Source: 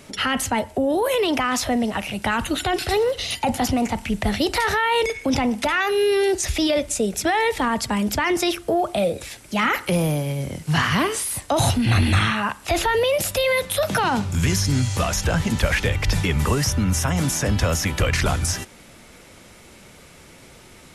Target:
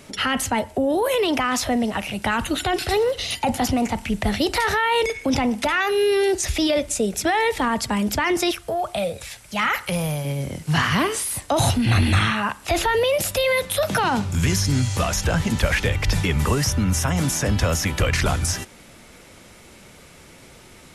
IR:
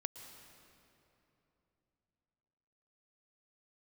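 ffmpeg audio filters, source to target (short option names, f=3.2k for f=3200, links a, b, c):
-filter_complex "[0:a]asettb=1/sr,asplit=3[a][b][c];[a]atrim=end=8.514[d];[b]atrim=start=8.51:end=10.25,asetpts=PTS-STARTPTS,afade=t=in:d=0.004:c=qsin,afade=t=out:st=1.736:d=0.004:c=qsin,equalizer=f=310:w=1.4:g=-13[e];[c]atrim=start=10.246[f];[d][e]acrossfade=d=0.004:c1=hsin:c2=qsin[g];[g][f]acrossfade=d=0.004:c1=qsin:c2=hsin"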